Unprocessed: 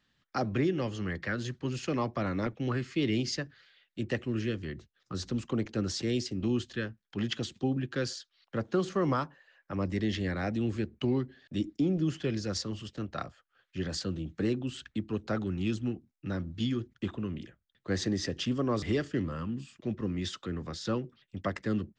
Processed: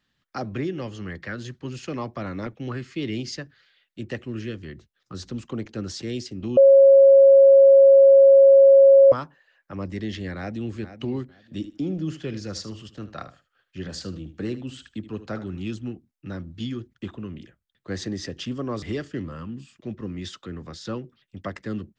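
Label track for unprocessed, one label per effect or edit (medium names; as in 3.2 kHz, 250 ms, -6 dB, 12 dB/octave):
6.570000	9.120000	bleep 547 Hz -8.5 dBFS
10.360000	10.780000	echo throw 460 ms, feedback 20%, level -11.5 dB
11.380000	15.620000	feedback delay 76 ms, feedback 18%, level -13.5 dB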